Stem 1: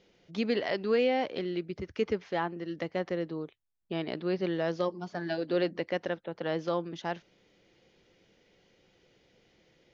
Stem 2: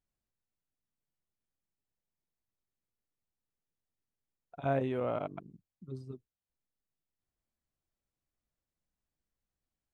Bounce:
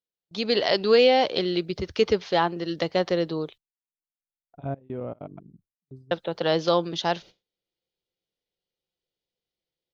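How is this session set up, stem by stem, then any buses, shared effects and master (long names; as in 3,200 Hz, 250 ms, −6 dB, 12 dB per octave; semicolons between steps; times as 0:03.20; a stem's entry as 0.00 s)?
0.0 dB, 0.00 s, muted 0:03.58–0:06.11, no send, parametric band 120 Hz −10.5 dB 0.95 octaves; noise gate −53 dBFS, range −15 dB; graphic EQ with 10 bands 125 Hz +8 dB, 250 Hz −6 dB, 2,000 Hz −6 dB, 4,000 Hz +9 dB
−13.0 dB, 0.00 s, no send, tilt shelving filter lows +7 dB, about 690 Hz; gate pattern "x.xxxxxxx..xx" 193 BPM −24 dB; automatic ducking −11 dB, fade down 0.30 s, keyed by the first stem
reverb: not used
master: noise gate with hold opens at −55 dBFS; automatic gain control gain up to 10.5 dB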